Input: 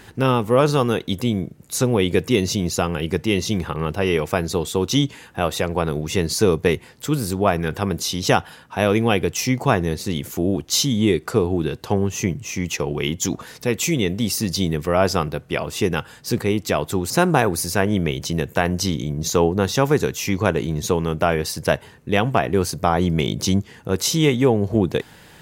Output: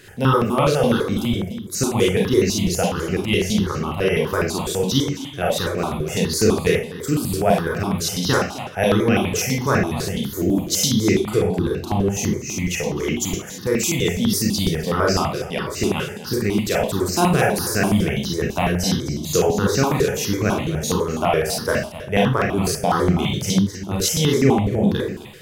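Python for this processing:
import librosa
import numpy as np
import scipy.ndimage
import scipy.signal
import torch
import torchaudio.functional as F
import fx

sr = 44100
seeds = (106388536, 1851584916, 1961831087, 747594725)

p1 = x + fx.echo_single(x, sr, ms=258, db=-13.5, dry=0)
p2 = fx.rev_schroeder(p1, sr, rt60_s=0.39, comb_ms=30, drr_db=-1.5)
y = fx.phaser_held(p2, sr, hz=12.0, low_hz=230.0, high_hz=3400.0)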